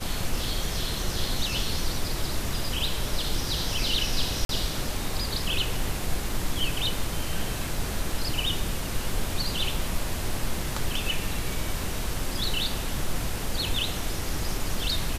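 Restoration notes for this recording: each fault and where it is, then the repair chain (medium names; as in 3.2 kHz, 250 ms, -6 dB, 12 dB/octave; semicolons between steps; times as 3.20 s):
4.45–4.49 s: dropout 42 ms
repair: interpolate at 4.45 s, 42 ms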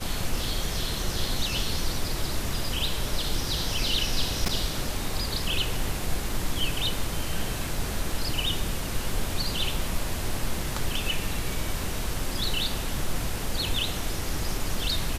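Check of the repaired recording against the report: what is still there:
nothing left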